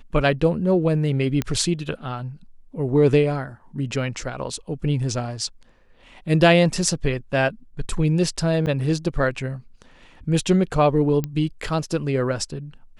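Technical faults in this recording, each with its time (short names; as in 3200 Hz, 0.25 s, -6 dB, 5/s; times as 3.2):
1.42 pop -10 dBFS
8.66–8.67 gap 8.9 ms
11.24 pop -13 dBFS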